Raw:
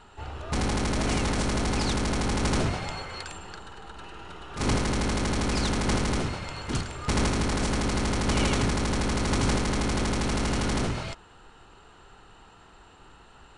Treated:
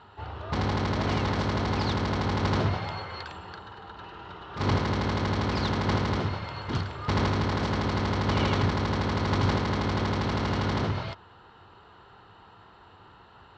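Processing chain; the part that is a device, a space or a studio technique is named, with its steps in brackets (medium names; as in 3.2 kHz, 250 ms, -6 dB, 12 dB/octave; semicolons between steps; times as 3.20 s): guitar cabinet (cabinet simulation 81–4500 Hz, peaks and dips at 95 Hz +8 dB, 270 Hz -3 dB, 1 kHz +4 dB, 2.5 kHz -5 dB)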